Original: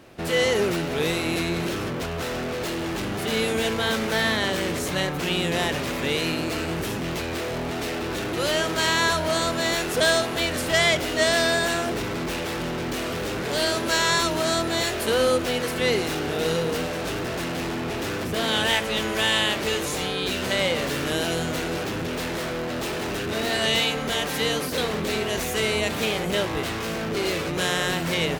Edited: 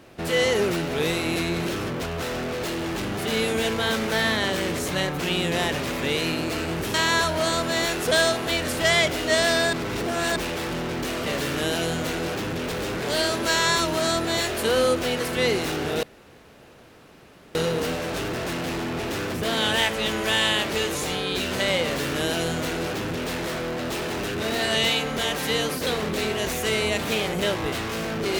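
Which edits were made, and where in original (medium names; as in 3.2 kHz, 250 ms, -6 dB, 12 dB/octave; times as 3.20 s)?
6.94–8.83 s: delete
11.62–12.25 s: reverse
16.46 s: insert room tone 1.52 s
20.75–22.21 s: copy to 13.15 s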